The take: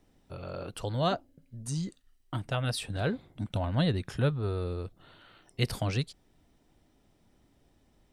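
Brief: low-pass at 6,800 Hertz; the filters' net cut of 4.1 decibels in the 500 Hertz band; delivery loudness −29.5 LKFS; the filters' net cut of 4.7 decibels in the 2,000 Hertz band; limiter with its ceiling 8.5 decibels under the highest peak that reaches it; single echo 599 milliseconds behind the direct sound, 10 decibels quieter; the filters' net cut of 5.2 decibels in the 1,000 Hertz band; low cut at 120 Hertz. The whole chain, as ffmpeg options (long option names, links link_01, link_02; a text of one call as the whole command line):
ffmpeg -i in.wav -af "highpass=120,lowpass=6800,equalizer=frequency=500:width_type=o:gain=-3.5,equalizer=frequency=1000:width_type=o:gain=-5,equalizer=frequency=2000:width_type=o:gain=-4.5,alimiter=limit=-24dB:level=0:latency=1,aecho=1:1:599:0.316,volume=8.5dB" out.wav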